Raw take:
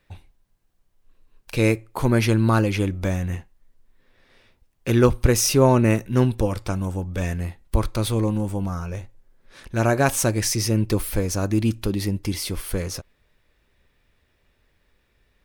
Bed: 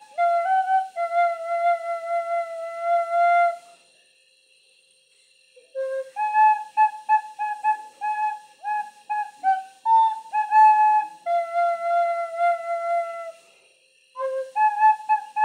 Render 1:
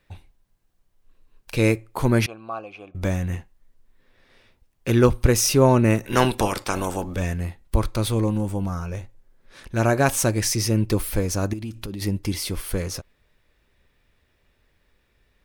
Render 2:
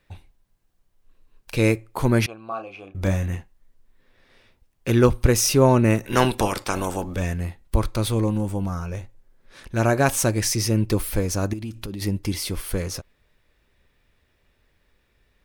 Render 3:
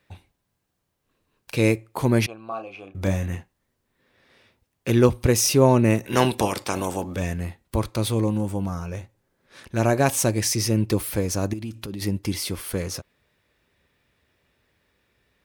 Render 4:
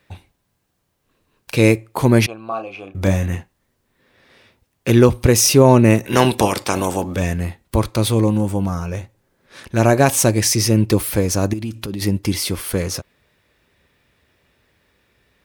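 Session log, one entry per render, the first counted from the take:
0:02.26–0:02.95: formant filter a; 0:06.03–0:07.14: ceiling on every frequency bin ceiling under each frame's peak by 21 dB; 0:11.53–0:12.02: downward compressor 12 to 1, threshold −27 dBFS
0:02.47–0:03.28: double-tracking delay 31 ms −7 dB
high-pass filter 84 Hz; dynamic equaliser 1,400 Hz, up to −5 dB, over −41 dBFS, Q 2.6
level +6.5 dB; brickwall limiter −1 dBFS, peak gain reduction 3 dB

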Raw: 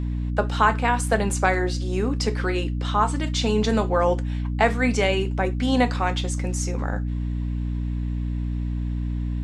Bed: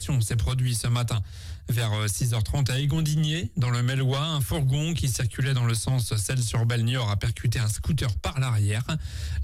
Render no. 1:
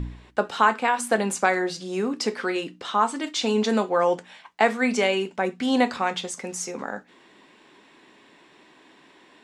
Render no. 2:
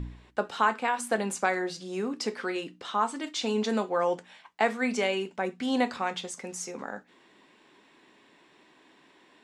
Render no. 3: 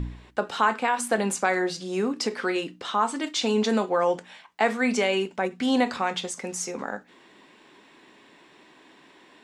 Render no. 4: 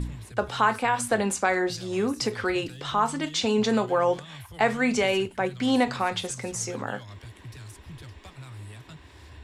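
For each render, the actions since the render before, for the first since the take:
hum removal 60 Hz, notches 5
level −5.5 dB
in parallel at −1 dB: brickwall limiter −21.5 dBFS, peak gain reduction 10.5 dB; on the sum: every ending faded ahead of time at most 330 dB per second
mix in bed −18 dB

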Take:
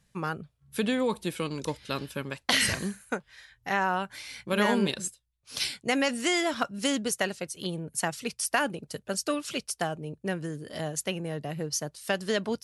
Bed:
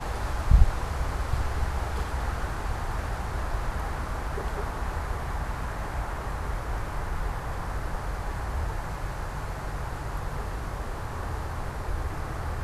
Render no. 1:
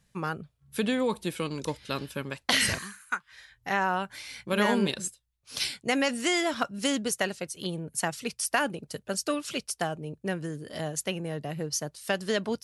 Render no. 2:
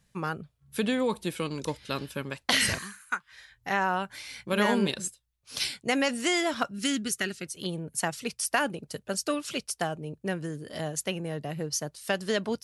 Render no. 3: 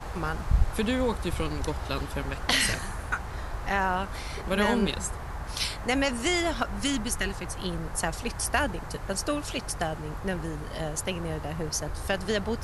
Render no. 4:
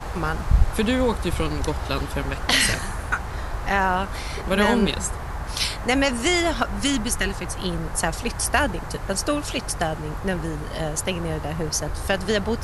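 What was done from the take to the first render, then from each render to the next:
0:02.78–0:03.32: low shelf with overshoot 790 Hz −13 dB, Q 3
0:06.73–0:07.46: gain on a spectral selection 430–1,200 Hz −11 dB
mix in bed −5 dB
level +5.5 dB; brickwall limiter −1 dBFS, peak gain reduction 2 dB

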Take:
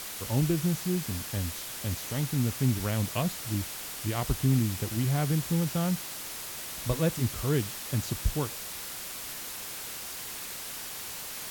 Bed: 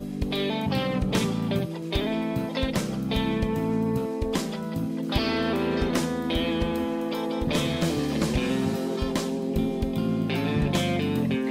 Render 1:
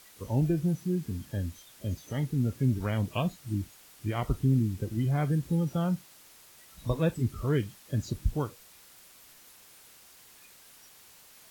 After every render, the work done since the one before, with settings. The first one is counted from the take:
noise reduction from a noise print 16 dB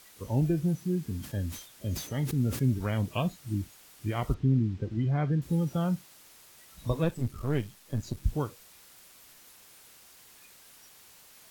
0:01.12–0:02.64: level that may fall only so fast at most 100 dB per second
0:04.34–0:05.42: high-frequency loss of the air 160 metres
0:07.04–0:08.24: gain on one half-wave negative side −7 dB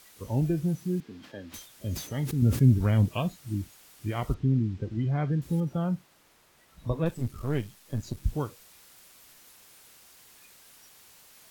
0:01.00–0:01.54: three-way crossover with the lows and the highs turned down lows −21 dB, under 250 Hz, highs −21 dB, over 4,800 Hz
0:02.42–0:03.09: low-shelf EQ 280 Hz +9 dB
0:05.60–0:07.06: high-shelf EQ 3,200 Hz −11.5 dB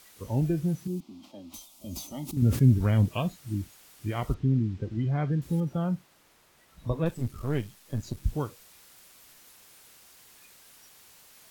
0:00.87–0:02.37: phaser with its sweep stopped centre 450 Hz, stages 6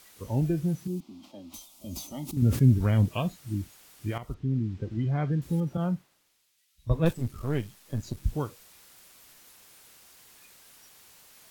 0:04.18–0:05.07: fade in equal-power, from −12.5 dB
0:05.77–0:07.13: multiband upward and downward expander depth 100%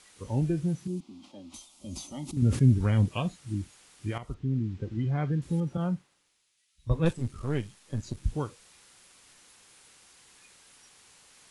Chebyshev low-pass filter 11,000 Hz, order 8
notch filter 650 Hz, Q 12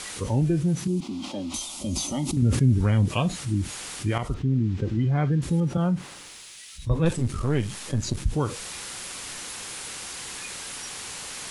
envelope flattener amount 50%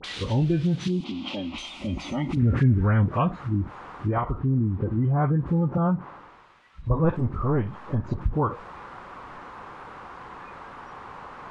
all-pass dispersion highs, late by 42 ms, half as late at 1,300 Hz
low-pass filter sweep 3,600 Hz → 1,100 Hz, 0:00.85–0:03.60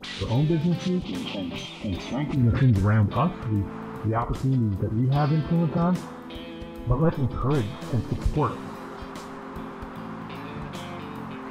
mix in bed −12 dB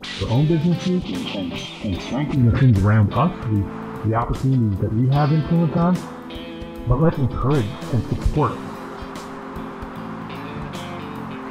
level +5 dB

